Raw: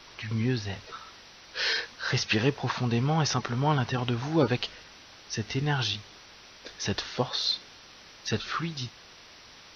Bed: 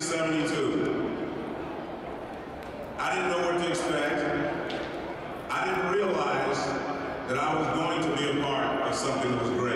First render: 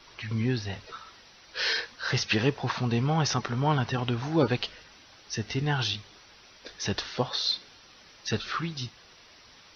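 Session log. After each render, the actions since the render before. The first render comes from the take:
broadband denoise 6 dB, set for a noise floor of −51 dBFS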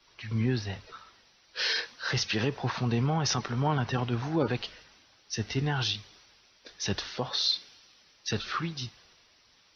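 brickwall limiter −19.5 dBFS, peak gain reduction 8 dB
multiband upward and downward expander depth 40%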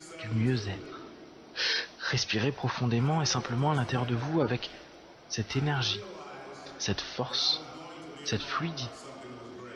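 mix in bed −17 dB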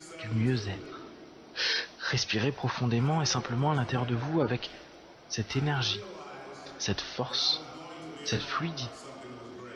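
0:03.40–0:04.64: high-frequency loss of the air 56 metres
0:07.88–0:08.45: flutter between parallel walls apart 4.3 metres, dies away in 0.22 s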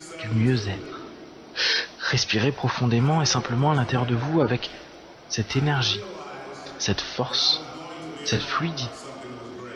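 level +6.5 dB

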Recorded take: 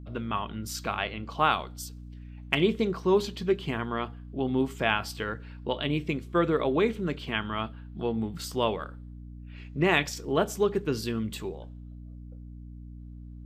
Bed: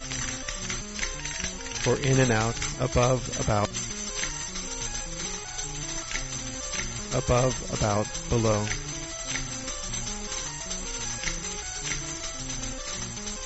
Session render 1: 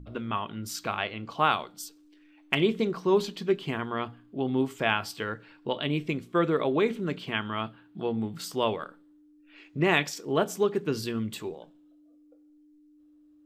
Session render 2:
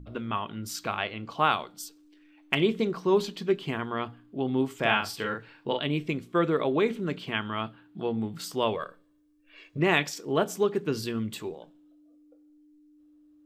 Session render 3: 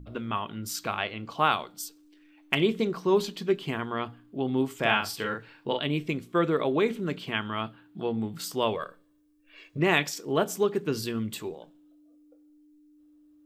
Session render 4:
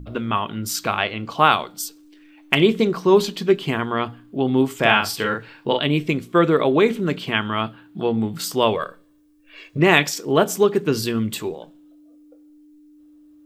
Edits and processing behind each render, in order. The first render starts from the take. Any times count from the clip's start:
hum removal 60 Hz, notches 4
0:04.79–0:05.79: double-tracking delay 42 ms −3 dB; 0:08.75–0:09.78: comb filter 1.8 ms
high-shelf EQ 8,300 Hz +6 dB
level +8.5 dB; brickwall limiter −1 dBFS, peak gain reduction 1 dB

